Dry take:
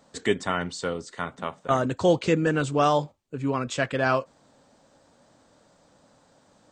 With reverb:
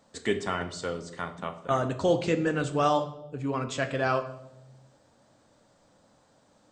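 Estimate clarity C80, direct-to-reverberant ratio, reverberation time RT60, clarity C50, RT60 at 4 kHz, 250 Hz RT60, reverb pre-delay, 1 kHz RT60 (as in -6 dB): 15.0 dB, 8.0 dB, 0.95 s, 12.5 dB, 0.70 s, 1.4 s, 9 ms, 0.75 s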